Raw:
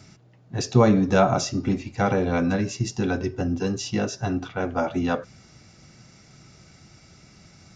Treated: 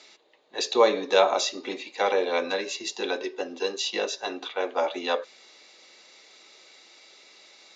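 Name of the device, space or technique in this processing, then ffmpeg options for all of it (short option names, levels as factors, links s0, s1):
phone speaker on a table: -af "highpass=120,highpass=f=450:w=0.5412,highpass=f=450:w=1.3066,equalizer=f=700:t=q:w=4:g=-8,equalizer=f=1400:t=q:w=4:g=-10,equalizer=f=3800:t=q:w=4:g=9,equalizer=f=5500:t=q:w=4:g=-9,lowpass=f=7100:w=0.5412,lowpass=f=7100:w=1.3066,volume=1.68"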